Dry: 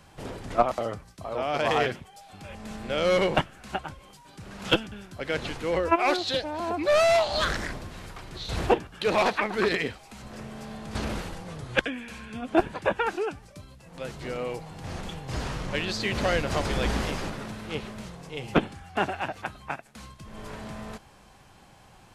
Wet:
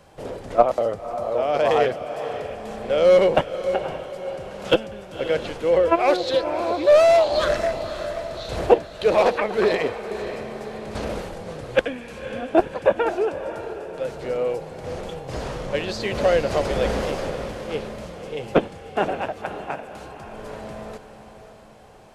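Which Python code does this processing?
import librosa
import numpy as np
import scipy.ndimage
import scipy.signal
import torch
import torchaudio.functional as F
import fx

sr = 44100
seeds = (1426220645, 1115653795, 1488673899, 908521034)

p1 = fx.peak_eq(x, sr, hz=530.0, db=11.0, octaves=1.0)
p2 = p1 + fx.echo_diffused(p1, sr, ms=546, feedback_pct=48, wet_db=-10.5, dry=0)
y = F.gain(torch.from_numpy(p2), -1.0).numpy()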